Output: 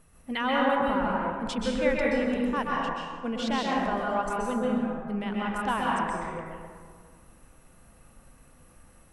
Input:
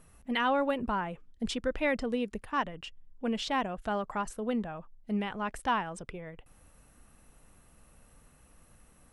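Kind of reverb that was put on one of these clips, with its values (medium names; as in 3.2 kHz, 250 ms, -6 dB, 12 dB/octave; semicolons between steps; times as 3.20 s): plate-style reverb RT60 1.9 s, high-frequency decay 0.45×, pre-delay 115 ms, DRR -4 dB; trim -1 dB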